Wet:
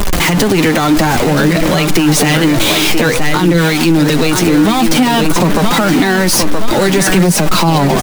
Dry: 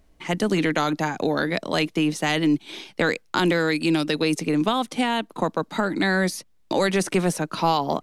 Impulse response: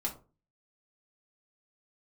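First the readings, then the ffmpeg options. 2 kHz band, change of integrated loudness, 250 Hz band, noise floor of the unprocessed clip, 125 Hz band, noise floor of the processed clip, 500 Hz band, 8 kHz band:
+11.0 dB, +12.5 dB, +12.5 dB, -58 dBFS, +15.5 dB, -13 dBFS, +10.5 dB, +19.0 dB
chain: -filter_complex "[0:a]aeval=exprs='val(0)+0.5*0.126*sgn(val(0))':c=same,asplit=2[s0][s1];[s1]aecho=0:1:972|1944|2916|3888:0.398|0.119|0.0358|0.0107[s2];[s0][s2]amix=inputs=2:normalize=0,flanger=delay=4.8:depth=5.1:regen=38:speed=0.54:shape=triangular,acrossover=split=230[s3][s4];[s4]acompressor=threshold=0.0631:ratio=6[s5];[s3][s5]amix=inputs=2:normalize=0,alimiter=level_in=7.08:limit=0.891:release=50:level=0:latency=1,volume=0.891"

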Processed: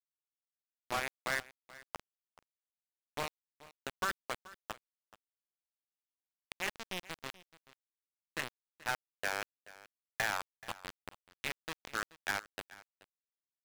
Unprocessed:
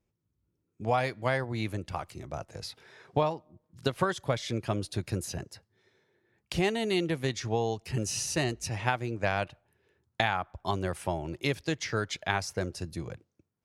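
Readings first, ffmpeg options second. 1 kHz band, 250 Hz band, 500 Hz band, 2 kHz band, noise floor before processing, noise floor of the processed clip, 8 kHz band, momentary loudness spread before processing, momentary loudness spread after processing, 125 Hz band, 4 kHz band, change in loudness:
-9.0 dB, -19.0 dB, -15.5 dB, -3.5 dB, -81 dBFS, under -85 dBFS, -9.5 dB, 12 LU, 17 LU, -23.5 dB, -7.5 dB, -8.0 dB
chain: -af "bandpass=f=1700:t=q:w=1.6:csg=0,acrusher=bits=4:mix=0:aa=0.000001,adynamicsmooth=sensitivity=7:basefreq=1700,volume=44.7,asoftclip=hard,volume=0.0224,aecho=1:1:430:0.106,volume=2.37"

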